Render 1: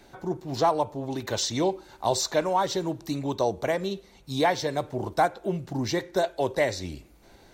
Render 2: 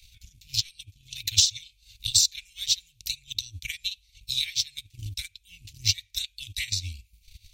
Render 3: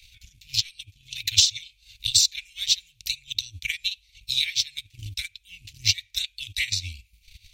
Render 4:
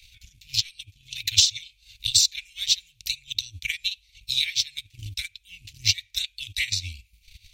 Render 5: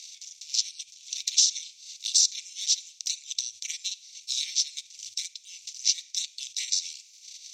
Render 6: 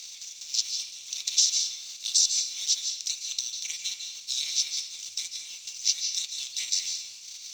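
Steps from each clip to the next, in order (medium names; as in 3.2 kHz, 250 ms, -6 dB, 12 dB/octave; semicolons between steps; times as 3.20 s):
Chebyshev band-stop 100–2400 Hz, order 5; transient shaper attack +9 dB, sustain -9 dB; trim +5 dB
peaking EQ 2.1 kHz +8 dB 1.9 oct; trim -1 dB
no audible change
spectral levelling over time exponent 0.6; band-pass filter 6 kHz, Q 3.3
companding laws mixed up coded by mu; reverberation RT60 0.80 s, pre-delay 140 ms, DRR 3 dB; trim -1.5 dB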